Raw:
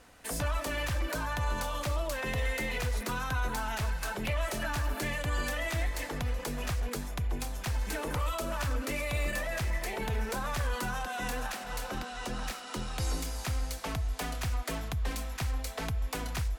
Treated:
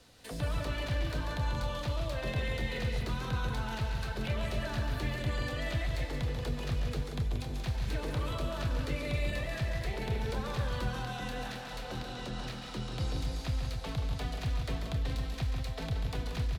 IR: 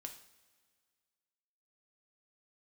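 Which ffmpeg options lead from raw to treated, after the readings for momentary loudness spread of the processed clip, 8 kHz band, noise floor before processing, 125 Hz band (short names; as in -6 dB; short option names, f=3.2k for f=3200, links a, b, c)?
4 LU, -10.0 dB, -41 dBFS, +1.5 dB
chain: -filter_complex "[0:a]equalizer=f=125:t=o:w=1:g=8,equalizer=f=500:t=o:w=1:g=3,equalizer=f=4k:t=o:w=1:g=11,acrossover=split=160|560|3500[a][b][c][d];[c]flanger=delay=3.2:depth=8.2:regen=-63:speed=0.19:shape=triangular[e];[d]acompressor=threshold=-49dB:ratio=6[f];[a][b][e][f]amix=inputs=4:normalize=0,aecho=1:1:139.9|180.8|268.2:0.447|0.398|0.398,volume=-4.5dB"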